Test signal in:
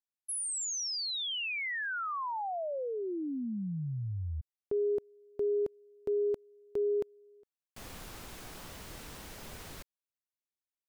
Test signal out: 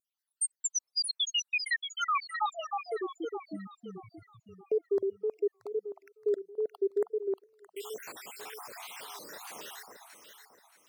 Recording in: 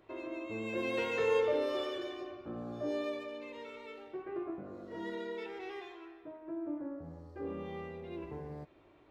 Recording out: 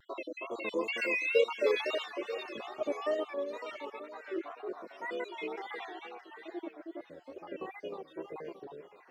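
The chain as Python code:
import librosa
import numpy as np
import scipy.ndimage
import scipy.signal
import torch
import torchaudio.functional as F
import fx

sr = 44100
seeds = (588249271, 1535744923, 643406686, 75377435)

y = fx.spec_dropout(x, sr, seeds[0], share_pct=71)
y = scipy.signal.sosfilt(scipy.signal.butter(2, 470.0, 'highpass', fs=sr, output='sos'), y)
y = fx.echo_alternate(y, sr, ms=313, hz=1200.0, feedback_pct=59, wet_db=-3.5)
y = fx.wow_flutter(y, sr, seeds[1], rate_hz=2.1, depth_cents=91.0)
y = y * librosa.db_to_amplitude(8.5)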